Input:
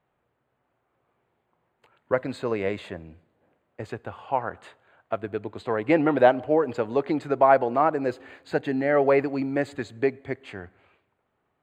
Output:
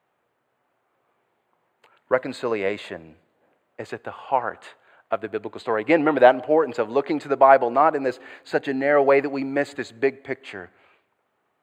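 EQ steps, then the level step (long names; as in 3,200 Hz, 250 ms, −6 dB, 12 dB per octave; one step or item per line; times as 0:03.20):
high-pass filter 390 Hz 6 dB per octave
+5.0 dB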